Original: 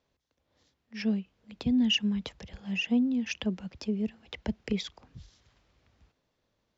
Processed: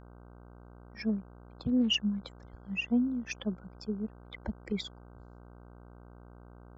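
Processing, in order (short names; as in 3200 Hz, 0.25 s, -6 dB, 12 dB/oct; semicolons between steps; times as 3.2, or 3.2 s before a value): per-bin expansion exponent 2; buzz 60 Hz, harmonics 26, -52 dBFS -5 dB/oct; 1.09–1.99 Doppler distortion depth 0.23 ms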